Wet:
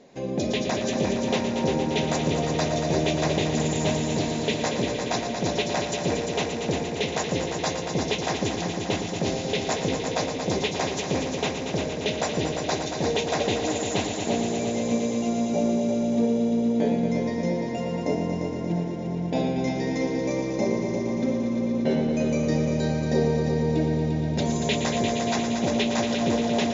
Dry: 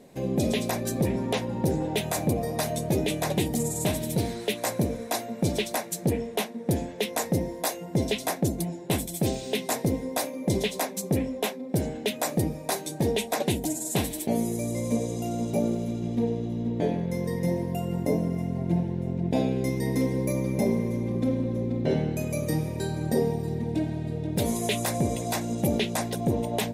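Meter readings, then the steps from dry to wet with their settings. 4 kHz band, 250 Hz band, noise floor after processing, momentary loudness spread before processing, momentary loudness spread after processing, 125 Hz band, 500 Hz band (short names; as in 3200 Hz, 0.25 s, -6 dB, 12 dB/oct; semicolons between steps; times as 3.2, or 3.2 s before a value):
+4.5 dB, +2.5 dB, -31 dBFS, 4 LU, 4 LU, -0.5 dB, +3.5 dB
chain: brick-wall FIR low-pass 7300 Hz; low shelf 210 Hz -9.5 dB; on a send: multi-head echo 0.116 s, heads all three, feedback 74%, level -10 dB; on the sum: gain +2 dB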